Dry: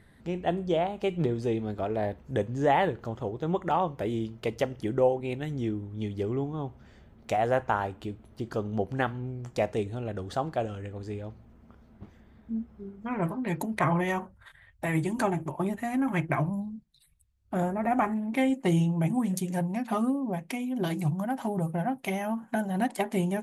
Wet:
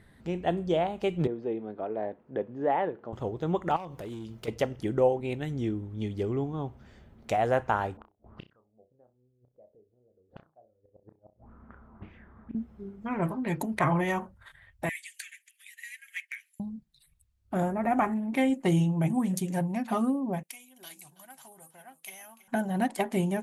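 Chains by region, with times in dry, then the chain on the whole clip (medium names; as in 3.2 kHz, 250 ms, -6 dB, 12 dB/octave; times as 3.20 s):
1.27–3.13 s: high-pass 280 Hz + tape spacing loss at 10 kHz 43 dB
3.76–4.48 s: treble shelf 4.2 kHz +8 dB + compression 4:1, threshold -36 dBFS + overload inside the chain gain 34 dB
7.97–12.55 s: inverted gate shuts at -30 dBFS, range -39 dB + flutter echo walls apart 5.5 m, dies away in 0.23 s + touch-sensitive low-pass 410–2600 Hz up, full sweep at -45.5 dBFS
14.89–16.60 s: steep high-pass 1.8 kHz 72 dB/octave + hard clipper -28 dBFS + transformer saturation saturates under 720 Hz
20.43–22.48 s: differentiator + delay 325 ms -16.5 dB
whole clip: none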